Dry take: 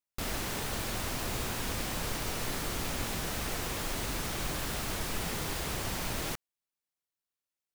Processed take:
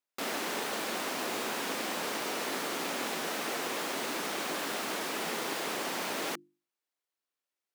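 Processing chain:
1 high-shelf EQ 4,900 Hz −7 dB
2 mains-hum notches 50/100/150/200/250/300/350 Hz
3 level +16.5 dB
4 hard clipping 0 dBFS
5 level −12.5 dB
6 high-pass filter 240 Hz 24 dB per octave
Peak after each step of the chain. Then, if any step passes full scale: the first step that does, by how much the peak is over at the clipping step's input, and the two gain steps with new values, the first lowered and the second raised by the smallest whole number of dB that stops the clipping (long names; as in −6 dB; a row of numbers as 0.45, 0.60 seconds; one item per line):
−21.5, −22.0, −5.5, −5.5, −18.0, −20.5 dBFS
no step passes full scale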